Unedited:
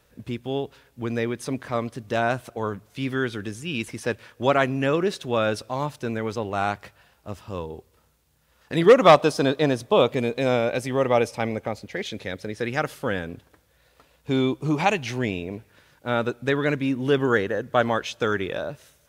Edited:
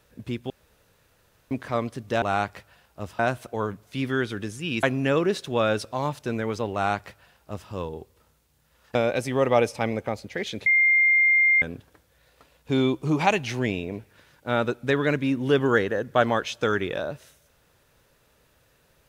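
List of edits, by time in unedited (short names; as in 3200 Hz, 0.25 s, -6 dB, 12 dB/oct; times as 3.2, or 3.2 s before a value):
0.5–1.51 room tone
3.86–4.6 cut
6.5–7.47 copy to 2.22
8.72–10.54 cut
12.25–13.21 bleep 2110 Hz -15.5 dBFS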